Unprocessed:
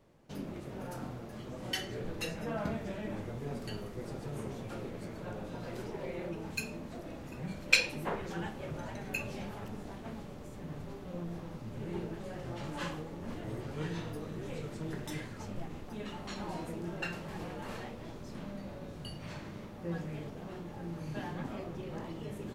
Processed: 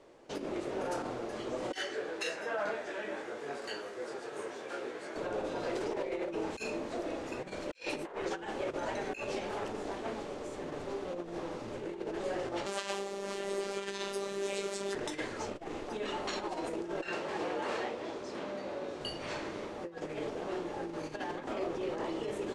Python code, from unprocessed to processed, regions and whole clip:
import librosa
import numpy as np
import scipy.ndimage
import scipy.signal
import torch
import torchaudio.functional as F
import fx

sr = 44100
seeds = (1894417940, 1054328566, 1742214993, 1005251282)

y = fx.chain(x, sr, fx.highpass(hz=470.0, slope=6),
    fx.peak_eq(hz=1600.0, db=7.0, octaves=0.37),
    fx.detune_double(cents=20), at=(1.78, 5.16))
y = fx.chain(y, sr, fx.highpass(hz=100.0, slope=12),
    fx.high_shelf(hz=3400.0, db=12.0),
    fx.robotise(hz=198.0), at=(12.66, 14.95))
y = fx.chain(y, sr, fx.highpass(hz=160.0, slope=6),
    fx.high_shelf(hz=10000.0, db=-10.5), at=(17.08, 19.01))
y = fx.over_compress(y, sr, threshold_db=-41.0, ratio=-0.5)
y = scipy.signal.sosfilt(scipy.signal.butter(4, 9100.0, 'lowpass', fs=sr, output='sos'), y)
y = fx.low_shelf_res(y, sr, hz=250.0, db=-12.0, q=1.5)
y = y * librosa.db_to_amplitude(6.0)